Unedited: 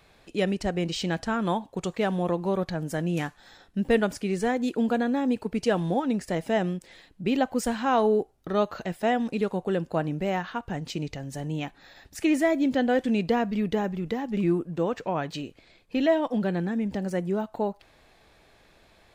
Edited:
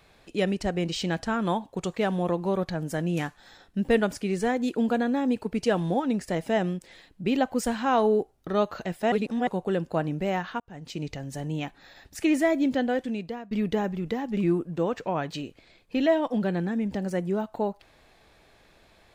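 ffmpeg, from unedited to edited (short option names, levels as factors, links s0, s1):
-filter_complex "[0:a]asplit=5[s0][s1][s2][s3][s4];[s0]atrim=end=9.122[s5];[s1]atrim=start=9.118:end=9.472,asetpts=PTS-STARTPTS,areverse[s6];[s2]atrim=start=9.468:end=10.6,asetpts=PTS-STARTPTS,afade=t=out:st=1.128:d=0.004:c=hsin[s7];[s3]atrim=start=10.6:end=13.51,asetpts=PTS-STARTPTS,afade=t=in:d=0.49,afade=t=out:st=2.04:d=0.87:silence=0.0891251[s8];[s4]atrim=start=13.51,asetpts=PTS-STARTPTS,afade=t=in:d=0.004:c=hsin:silence=0.0891251[s9];[s5][s6]acrossfade=d=0.004:c1=hsin:c2=hsin[s10];[s7][s8][s9]concat=n=3:v=0:a=1[s11];[s10][s11]acrossfade=d=0.004:c1=hsin:c2=hsin"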